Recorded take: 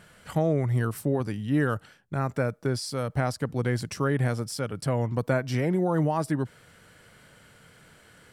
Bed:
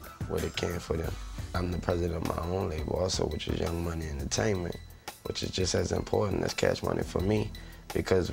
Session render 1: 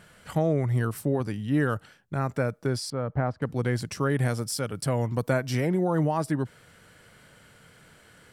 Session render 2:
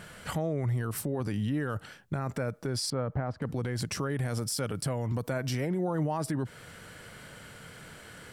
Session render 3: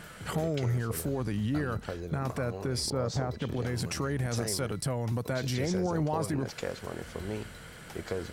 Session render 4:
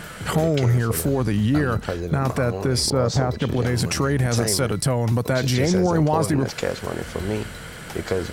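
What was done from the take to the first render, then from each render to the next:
2.90–3.42 s: low-pass 1.5 kHz; 4.10–5.67 s: treble shelf 5.7 kHz +7.5 dB
in parallel at +1 dB: compression, threshold -33 dBFS, peak gain reduction 12.5 dB; on the sum: peak limiter -23 dBFS, peak gain reduction 11 dB
add bed -9 dB
trim +10.5 dB

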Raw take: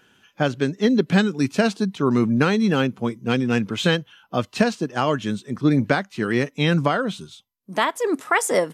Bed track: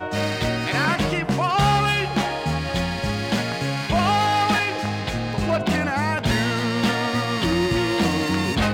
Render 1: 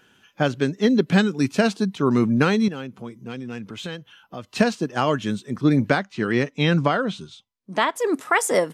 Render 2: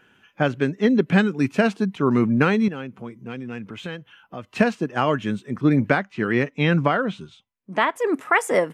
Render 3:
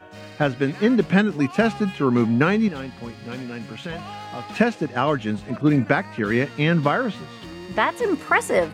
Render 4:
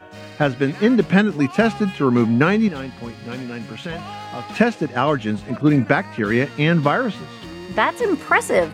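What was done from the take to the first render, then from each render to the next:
2.68–4.52 s: compression 2:1, threshold -39 dBFS; 5.98–7.96 s: low-pass 6.6 kHz
resonant high shelf 3.2 kHz -7 dB, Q 1.5
add bed track -16.5 dB
trim +2.5 dB

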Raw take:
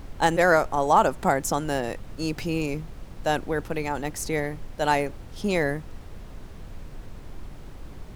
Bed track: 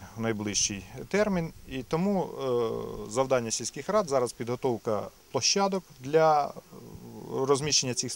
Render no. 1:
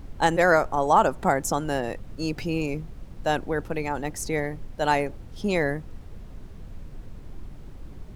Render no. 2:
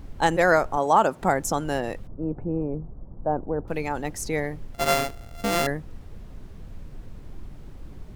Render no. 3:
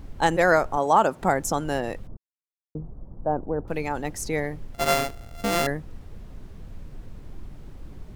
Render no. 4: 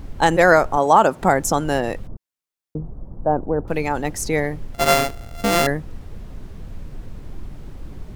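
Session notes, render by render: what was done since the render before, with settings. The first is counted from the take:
noise reduction 6 dB, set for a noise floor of -42 dBFS
0.77–1.22 s: high-pass 130 Hz; 2.07–3.68 s: low-pass 1 kHz 24 dB/octave; 4.74–5.67 s: sorted samples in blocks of 64 samples
2.17–2.75 s: mute
trim +6 dB; peak limiter -2 dBFS, peak gain reduction 2 dB

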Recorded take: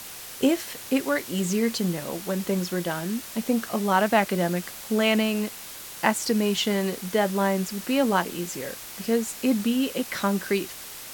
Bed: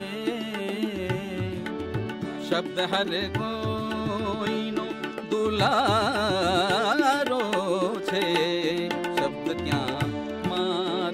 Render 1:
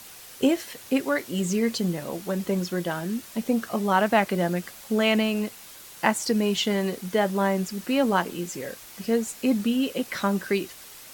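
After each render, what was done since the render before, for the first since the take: noise reduction 6 dB, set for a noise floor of -40 dBFS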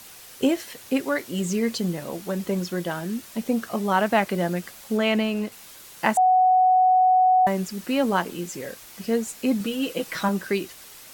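4.97–5.52 s: treble shelf 4.7 kHz -6 dB; 6.17–7.47 s: bleep 742 Hz -14 dBFS; 9.60–10.29 s: comb 6.2 ms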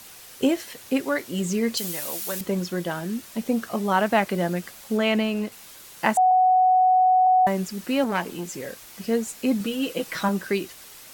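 1.77–2.41 s: tilt EQ +4 dB/octave; 6.31–7.27 s: high-order bell 1.8 kHz -10 dB; 8.04–8.56 s: transformer saturation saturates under 1.1 kHz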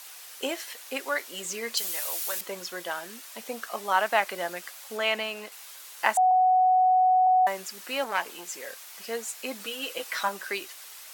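high-pass 730 Hz 12 dB/octave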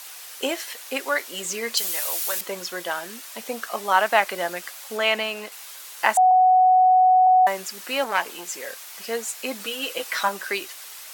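trim +5 dB; peak limiter -3 dBFS, peak gain reduction 1.5 dB

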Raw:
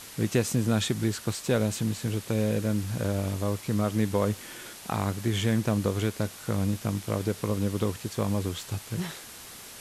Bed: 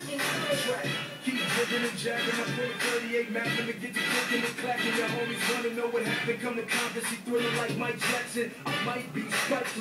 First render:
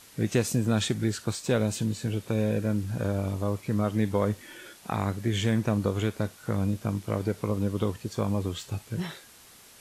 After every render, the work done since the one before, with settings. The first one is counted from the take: noise print and reduce 8 dB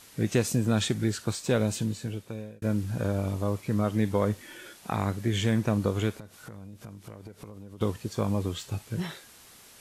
1.75–2.62 s: fade out; 6.17–7.81 s: compression 16:1, threshold -39 dBFS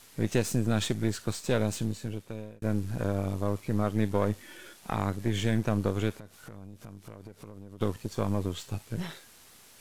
partial rectifier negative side -7 dB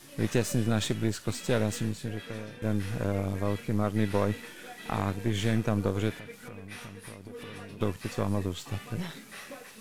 add bed -16 dB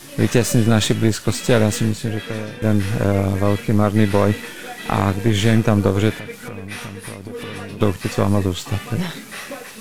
trim +12 dB; peak limiter -2 dBFS, peak gain reduction 2 dB

